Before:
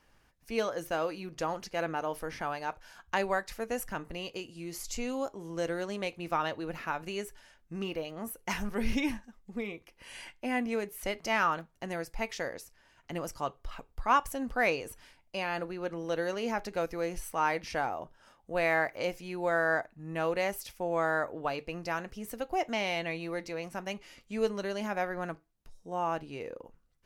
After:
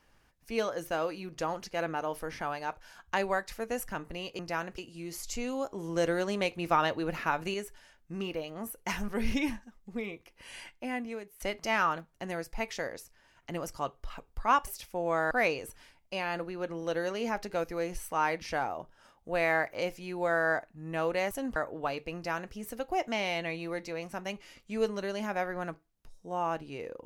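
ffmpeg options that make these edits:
ffmpeg -i in.wav -filter_complex "[0:a]asplit=10[link_01][link_02][link_03][link_04][link_05][link_06][link_07][link_08][link_09][link_10];[link_01]atrim=end=4.392[link_11];[link_02]atrim=start=21.758:end=22.152[link_12];[link_03]atrim=start=4.388:end=5.322[link_13];[link_04]atrim=start=5.318:end=7.152,asetpts=PTS-STARTPTS,volume=4.5dB[link_14];[link_05]atrim=start=7.148:end=11.01,asetpts=PTS-STARTPTS,afade=type=out:start_time=3.032:duration=0.83:silence=0.199526[link_15];[link_06]atrim=start=11.01:end=14.282,asetpts=PTS-STARTPTS,afade=type=in:duration=0.004:curve=hsin:silence=0.199526[link_16];[link_07]atrim=start=20.528:end=21.172[link_17];[link_08]atrim=start=14.528:end=20.532[link_18];[link_09]atrim=start=14.278:end=14.532[link_19];[link_10]atrim=start=21.168[link_20];[link_11][link_12]acrossfade=duration=0.004:curve1=hsin:curve2=hsin[link_21];[link_21][link_13]acrossfade=duration=0.004:curve1=hsin:curve2=hsin[link_22];[link_22][link_14]acrossfade=duration=0.004:curve1=hsin:curve2=hsin[link_23];[link_15][link_16]concat=n=2:v=0:a=1[link_24];[link_23][link_24]acrossfade=duration=0.004:curve1=hsin:curve2=hsin[link_25];[link_25][link_17]acrossfade=duration=0.004:curve1=hsin:curve2=hsin[link_26];[link_26][link_18]acrossfade=duration=0.004:curve1=hsin:curve2=hsin[link_27];[link_27][link_19]acrossfade=duration=0.004:curve1=hsin:curve2=hsin[link_28];[link_28][link_20]acrossfade=duration=0.004:curve1=hsin:curve2=hsin" out.wav

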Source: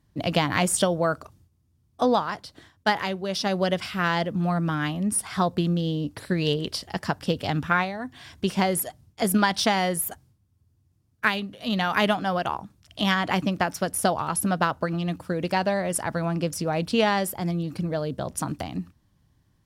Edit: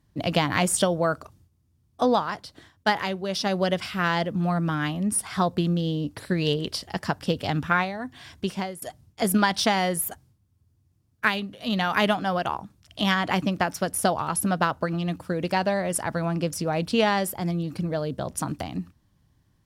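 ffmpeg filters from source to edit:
ffmpeg -i in.wav -filter_complex "[0:a]asplit=2[link_01][link_02];[link_01]atrim=end=8.82,asetpts=PTS-STARTPTS,afade=type=out:start_time=8.31:duration=0.51:silence=0.0794328[link_03];[link_02]atrim=start=8.82,asetpts=PTS-STARTPTS,afade=type=in:duration=0.004:curve=hsin:silence=0.0794328[link_04];[link_03][link_04]concat=n=2:v=0:a=1" out.wav

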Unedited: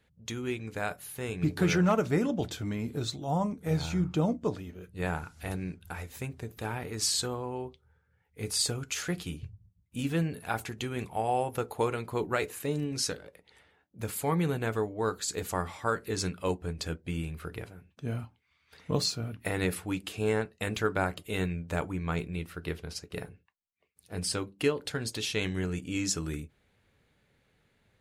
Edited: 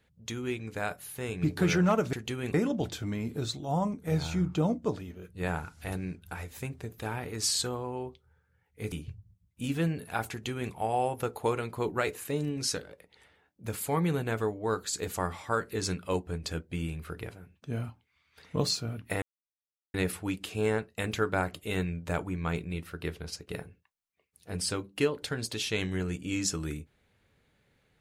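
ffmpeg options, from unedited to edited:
ffmpeg -i in.wav -filter_complex "[0:a]asplit=5[link_01][link_02][link_03][link_04][link_05];[link_01]atrim=end=2.132[link_06];[link_02]atrim=start=10.658:end=11.072[link_07];[link_03]atrim=start=2.128:end=8.512[link_08];[link_04]atrim=start=9.268:end=19.57,asetpts=PTS-STARTPTS,afade=type=out:start_time=10.298:duration=0.004:curve=hsin,apad=pad_dur=0.72[link_09];[link_05]atrim=start=19.57,asetpts=PTS-STARTPTS,afade=type=in:duration=0.004:curve=hsin[link_10];[link_06][link_07]acrossfade=duration=0.004:curve1=hsin:curve2=hsin[link_11];[link_11][link_08]acrossfade=duration=0.004:curve1=hsin:curve2=hsin[link_12];[link_09][link_10]concat=n=2:v=0:a=1[link_13];[link_12][link_13]acrossfade=duration=0.004:curve1=hsin:curve2=hsin" out.wav

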